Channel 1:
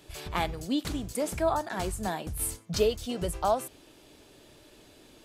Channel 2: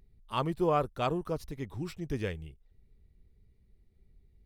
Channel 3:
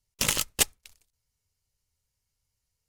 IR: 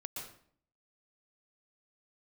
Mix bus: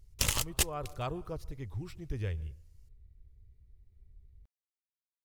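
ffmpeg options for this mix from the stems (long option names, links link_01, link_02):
-filter_complex "[1:a]volume=-6.5dB,asplit=2[link_01][link_02];[link_02]volume=-18.5dB[link_03];[2:a]volume=2.5dB[link_04];[3:a]atrim=start_sample=2205[link_05];[link_03][link_05]afir=irnorm=-1:irlink=0[link_06];[link_01][link_04][link_06]amix=inputs=3:normalize=0,lowshelf=frequency=130:width_type=q:width=1.5:gain=10,acompressor=threshold=-29dB:ratio=2.5"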